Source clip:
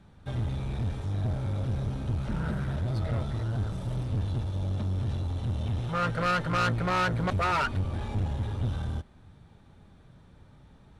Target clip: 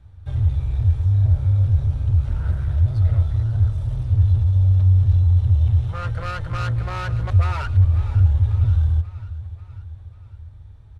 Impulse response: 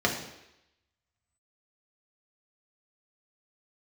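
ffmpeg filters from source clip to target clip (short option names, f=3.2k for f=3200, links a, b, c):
-filter_complex "[0:a]lowshelf=f=130:t=q:w=3:g=12.5,asplit=2[a][b];[b]aecho=0:1:541|1082|1623|2164|2705:0.15|0.0823|0.0453|0.0249|0.0137[c];[a][c]amix=inputs=2:normalize=0,volume=-3.5dB"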